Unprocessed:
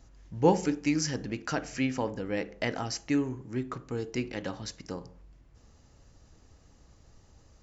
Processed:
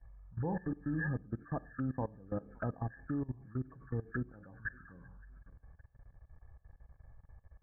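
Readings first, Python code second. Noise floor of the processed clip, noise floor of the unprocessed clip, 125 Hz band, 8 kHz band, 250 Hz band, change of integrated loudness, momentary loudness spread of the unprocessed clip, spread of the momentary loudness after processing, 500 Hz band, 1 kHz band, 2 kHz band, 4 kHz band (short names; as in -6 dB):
-71 dBFS, -60 dBFS, -2.0 dB, n/a, -8.5 dB, -8.5 dB, 13 LU, 19 LU, -12.5 dB, -11.0 dB, -6.0 dB, under -40 dB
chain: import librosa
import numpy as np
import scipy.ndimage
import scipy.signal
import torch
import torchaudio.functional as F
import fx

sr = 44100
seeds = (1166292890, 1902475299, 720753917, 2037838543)

y = fx.freq_compress(x, sr, knee_hz=1100.0, ratio=4.0)
y = fx.env_phaser(y, sr, low_hz=220.0, high_hz=1400.0, full_db=-30.0)
y = fx.peak_eq(y, sr, hz=380.0, db=-12.0, octaves=1.8)
y = fx.echo_feedback(y, sr, ms=566, feedback_pct=25, wet_db=-23)
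y = fx.level_steps(y, sr, step_db=20)
y = fx.air_absorb(y, sr, metres=300.0)
y = F.gain(torch.from_numpy(y), 6.5).numpy()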